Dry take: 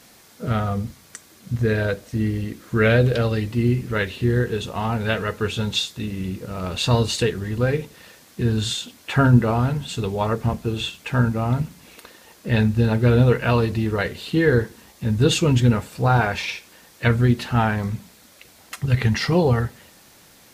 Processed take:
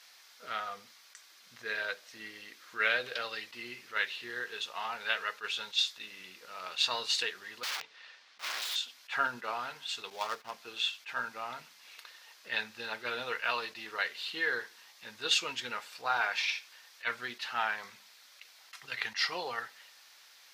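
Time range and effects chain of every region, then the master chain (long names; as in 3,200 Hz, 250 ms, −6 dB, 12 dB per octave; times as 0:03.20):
0:07.63–0:08.76: low-pass filter 4,100 Hz + wrap-around overflow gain 24.5 dB
0:10.10–0:10.51: gap after every zero crossing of 0.096 ms + noise gate −35 dBFS, range −13 dB
whole clip: high-pass filter 1,200 Hz 12 dB per octave; high shelf with overshoot 6,500 Hz −6.5 dB, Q 1.5; level that may rise only so fast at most 340 dB per second; level −4.5 dB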